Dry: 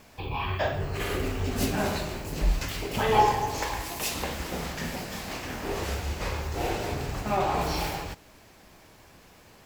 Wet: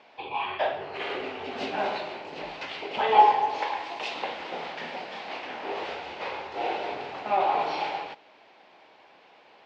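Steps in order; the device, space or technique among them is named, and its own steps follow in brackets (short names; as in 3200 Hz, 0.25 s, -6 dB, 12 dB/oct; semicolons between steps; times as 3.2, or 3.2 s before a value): phone earpiece (speaker cabinet 470–3700 Hz, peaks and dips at 820 Hz +4 dB, 1200 Hz -4 dB, 1700 Hz -4 dB); gain +2 dB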